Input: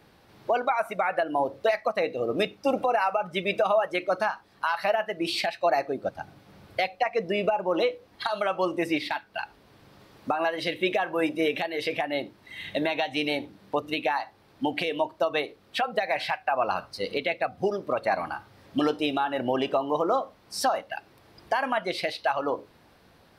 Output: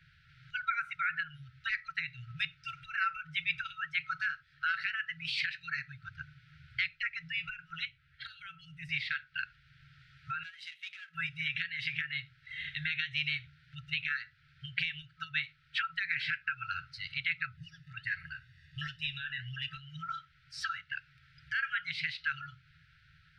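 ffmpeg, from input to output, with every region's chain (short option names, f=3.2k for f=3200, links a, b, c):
-filter_complex "[0:a]asettb=1/sr,asplit=3[a][b][c];[a]atrim=end=7.854[d];[b]atrim=start=7.85:end=8.89,asetpts=PTS-STARTPTS,afade=t=in:d=0.004:c=qsin,afade=t=out:st=1.036:d=0.004:c=qsin,acrossover=split=300|3000[e][f][g];[f]acompressor=threshold=-43dB:ratio=4:attack=3.2:release=140:knee=2.83:detection=peak[h];[e][h][g]amix=inputs=3:normalize=0,equalizer=f=5.4k:w=0.94:g=-7[i];[c]atrim=start=8.886[j];[d][i]acrossfade=d=0.004:c1=hsin:c2=qsin[k];[k][j]acrossfade=d=0.004:c1=qsin:c2=hsin,asettb=1/sr,asplit=3[l][m][n];[l]atrim=end=10.434[o];[m]atrim=start=10.43:end=11.15,asetpts=PTS-STARTPTS,afade=t=in:d=0.004:c=qsin,afade=t=out:st=0.716:d=0.004:c=qsin,aeval=exprs='if(lt(val(0),0),0.447*val(0),val(0))':c=same,aderivative[p];[n]atrim=start=11.146[q];[o][p]acrossfade=d=0.004:c1=hsin:c2=qsin[r];[r][q]acrossfade=d=0.004:c1=qsin:c2=hsin,asettb=1/sr,asplit=3[s][t][u];[s]atrim=end=17.574[v];[t]atrim=start=17.57:end=19.73,asetpts=PTS-STARTPTS,afade=t=in:d=0.004:c=qsin,afade=t=out:st=2.156:d=0.004:c=qsin,highshelf=f=6.2k:g=5.5,aecho=1:1:1.1:0.81,atrim=end_sample=95256,flanger=delay=2.3:depth=9.5:regen=66:speed=1.4:shape=sinusoidal[w];[u]atrim=start=19.726[x];[v][w]acrossfade=d=0.004:c1=hsin:c2=qsin[y];[y][x]acrossfade=d=0.004:c1=qsin:c2=hsin,afftfilt=real='re*(1-between(b*sr/4096,170,1300))':imag='im*(1-between(b*sr/4096,170,1300))':win_size=4096:overlap=0.75,lowpass=3.1k,bandreject=f=50:t=h:w=6,bandreject=f=100:t=h:w=6"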